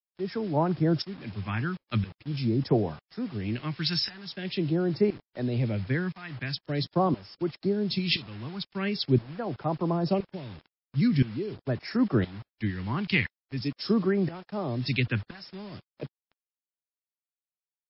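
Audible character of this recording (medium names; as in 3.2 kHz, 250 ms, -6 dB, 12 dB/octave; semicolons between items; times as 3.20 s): tremolo saw up 0.98 Hz, depth 90%; phasing stages 2, 0.44 Hz, lowest notch 540–3100 Hz; a quantiser's noise floor 8-bit, dither none; MP3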